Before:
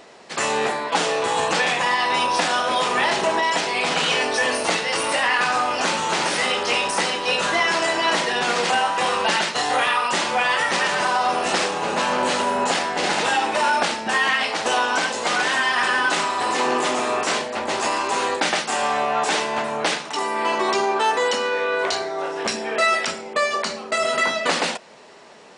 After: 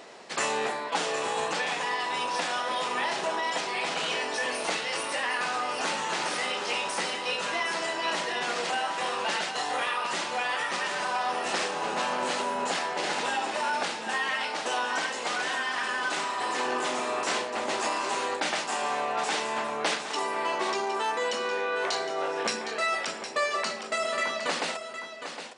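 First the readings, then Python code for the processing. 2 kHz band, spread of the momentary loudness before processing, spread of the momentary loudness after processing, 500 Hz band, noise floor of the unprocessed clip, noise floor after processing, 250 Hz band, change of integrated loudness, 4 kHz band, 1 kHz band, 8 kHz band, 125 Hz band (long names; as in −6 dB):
−8.5 dB, 4 LU, 1 LU, −8.0 dB, −34 dBFS, −38 dBFS, −9.5 dB, −8.5 dB, −8.0 dB, −8.0 dB, −7.5 dB, −11.5 dB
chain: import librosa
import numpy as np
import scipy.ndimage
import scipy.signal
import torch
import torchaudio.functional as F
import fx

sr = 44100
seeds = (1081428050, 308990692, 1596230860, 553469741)

p1 = fx.low_shelf(x, sr, hz=120.0, db=-9.5)
p2 = fx.rider(p1, sr, range_db=10, speed_s=0.5)
p3 = p2 + fx.echo_single(p2, sr, ms=762, db=-9.0, dry=0)
y = F.gain(torch.from_numpy(p3), -8.5).numpy()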